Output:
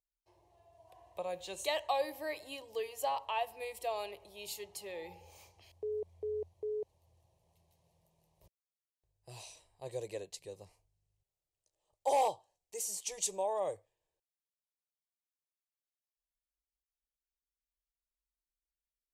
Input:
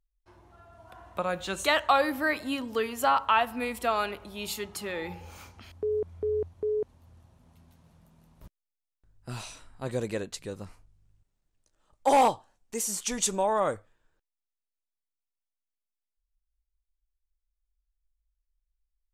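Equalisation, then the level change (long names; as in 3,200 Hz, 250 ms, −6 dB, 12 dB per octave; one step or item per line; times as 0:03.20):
high-pass filter 160 Hz 6 dB per octave
phaser with its sweep stopped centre 580 Hz, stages 4
notch filter 3,500 Hz, Q 22
−6.5 dB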